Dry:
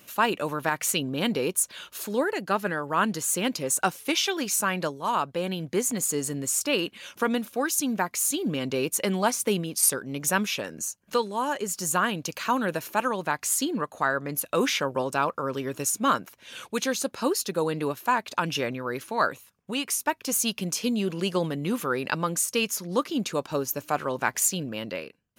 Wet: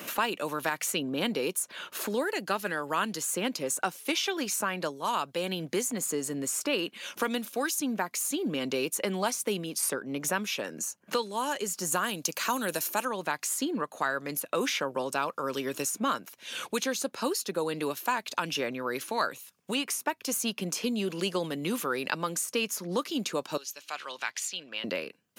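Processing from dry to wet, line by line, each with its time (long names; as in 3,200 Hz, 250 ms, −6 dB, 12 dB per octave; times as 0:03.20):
0:11.92–0:13.05: bass and treble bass 0 dB, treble +14 dB
0:23.57–0:24.84: resonant band-pass 3,600 Hz, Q 1.4
whole clip: high-pass filter 190 Hz 12 dB per octave; multiband upward and downward compressor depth 70%; level −4 dB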